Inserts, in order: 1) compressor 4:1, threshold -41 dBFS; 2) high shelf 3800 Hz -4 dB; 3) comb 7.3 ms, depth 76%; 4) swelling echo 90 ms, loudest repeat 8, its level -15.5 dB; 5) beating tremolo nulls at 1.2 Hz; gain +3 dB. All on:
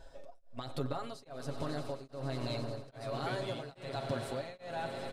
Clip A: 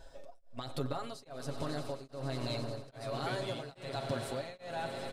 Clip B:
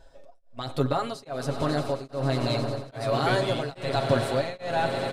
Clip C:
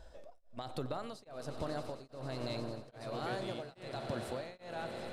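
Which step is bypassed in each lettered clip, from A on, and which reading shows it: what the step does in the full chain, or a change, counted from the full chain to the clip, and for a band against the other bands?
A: 2, 8 kHz band +3.0 dB; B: 1, mean gain reduction 10.0 dB; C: 3, 125 Hz band -2.5 dB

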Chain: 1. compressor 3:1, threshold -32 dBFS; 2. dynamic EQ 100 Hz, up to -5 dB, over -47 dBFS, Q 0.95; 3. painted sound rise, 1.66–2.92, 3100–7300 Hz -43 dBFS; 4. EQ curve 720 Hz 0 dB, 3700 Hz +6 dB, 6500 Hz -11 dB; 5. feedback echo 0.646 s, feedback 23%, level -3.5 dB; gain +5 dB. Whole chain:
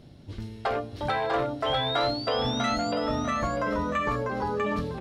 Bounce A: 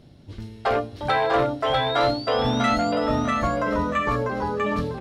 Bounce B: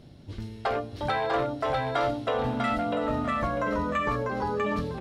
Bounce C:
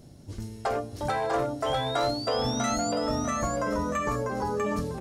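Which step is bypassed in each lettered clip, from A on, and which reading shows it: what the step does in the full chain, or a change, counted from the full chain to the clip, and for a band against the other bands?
1, 4 kHz band -4.0 dB; 3, 4 kHz band -9.0 dB; 4, 8 kHz band +10.0 dB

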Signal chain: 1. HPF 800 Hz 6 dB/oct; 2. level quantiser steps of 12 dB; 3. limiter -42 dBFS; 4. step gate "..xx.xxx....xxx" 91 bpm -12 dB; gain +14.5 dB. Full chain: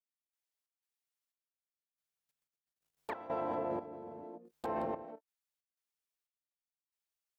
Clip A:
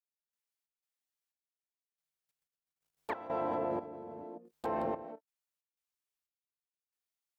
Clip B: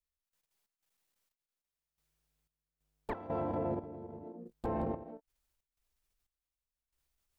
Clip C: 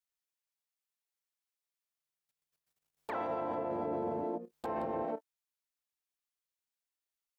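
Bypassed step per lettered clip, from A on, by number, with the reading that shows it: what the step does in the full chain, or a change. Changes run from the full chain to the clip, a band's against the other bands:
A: 3, mean gain reduction 2.0 dB; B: 1, 125 Hz band +11.5 dB; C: 4, crest factor change -3.0 dB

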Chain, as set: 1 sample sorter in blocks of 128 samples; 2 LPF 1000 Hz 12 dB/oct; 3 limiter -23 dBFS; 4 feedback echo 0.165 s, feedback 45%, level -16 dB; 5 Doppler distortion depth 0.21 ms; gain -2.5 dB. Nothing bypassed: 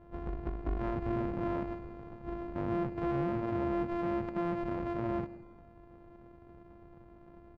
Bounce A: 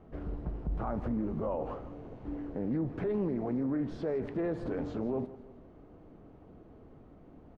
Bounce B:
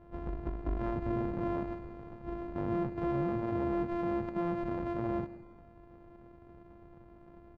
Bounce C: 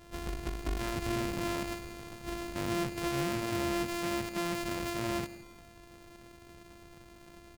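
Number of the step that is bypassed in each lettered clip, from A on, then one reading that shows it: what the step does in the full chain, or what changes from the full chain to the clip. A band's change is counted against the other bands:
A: 1, 1 kHz band -5.5 dB; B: 5, 2 kHz band -1.5 dB; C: 2, 2 kHz band +9.5 dB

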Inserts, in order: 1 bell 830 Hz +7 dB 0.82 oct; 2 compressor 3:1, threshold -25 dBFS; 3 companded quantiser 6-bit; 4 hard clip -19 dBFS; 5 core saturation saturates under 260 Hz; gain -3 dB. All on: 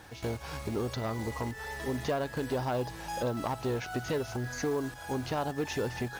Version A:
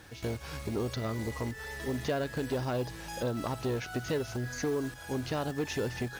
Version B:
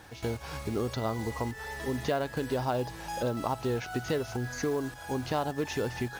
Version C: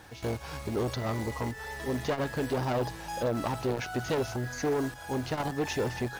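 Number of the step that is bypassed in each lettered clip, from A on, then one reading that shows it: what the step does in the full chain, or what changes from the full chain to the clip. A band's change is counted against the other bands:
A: 1, 1 kHz band -4.5 dB; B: 4, distortion -23 dB; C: 2, crest factor change -2.0 dB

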